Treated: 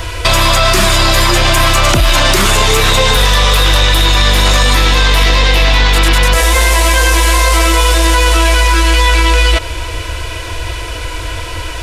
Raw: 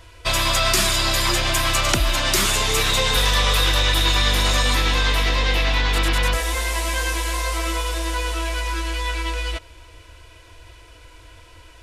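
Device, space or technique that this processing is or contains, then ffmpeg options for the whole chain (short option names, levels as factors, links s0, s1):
mastering chain: -filter_complex "[0:a]equalizer=f=270:t=o:w=0.4:g=-2.5,acrossover=split=1400|3500[s0][s1][s2];[s0]acompressor=threshold=0.0891:ratio=4[s3];[s1]acompressor=threshold=0.0282:ratio=4[s4];[s2]acompressor=threshold=0.0282:ratio=4[s5];[s3][s4][s5]amix=inputs=3:normalize=0,acompressor=threshold=0.0501:ratio=2,asoftclip=type=tanh:threshold=0.133,alimiter=level_in=18.8:limit=0.891:release=50:level=0:latency=1,volume=0.891"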